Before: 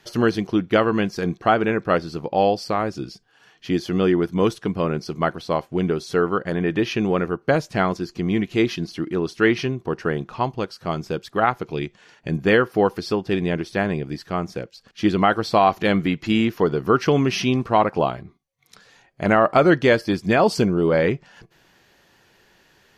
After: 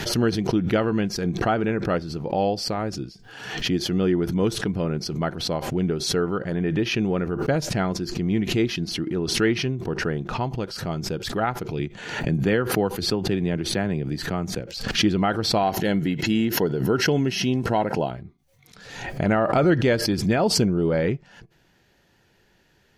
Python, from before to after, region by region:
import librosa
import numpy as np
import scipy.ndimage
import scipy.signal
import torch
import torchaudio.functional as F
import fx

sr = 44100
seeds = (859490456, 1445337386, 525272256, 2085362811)

y = fx.chain(x, sr, fx.notch(hz=5300.0, q=7.6),
    fx.band_squash(depth_pct=40), at=(11.79, 14.6))
y = fx.chain(y, sr, fx.high_shelf(hz=6600.0, db=8.0),
    fx.notch_comb(f0_hz=1200.0), at=(15.63, 18.11))
y = fx.low_shelf(y, sr, hz=260.0, db=8.5)
y = fx.notch(y, sr, hz=1100.0, q=9.1)
y = fx.pre_swell(y, sr, db_per_s=57.0)
y = F.gain(torch.from_numpy(y), -6.5).numpy()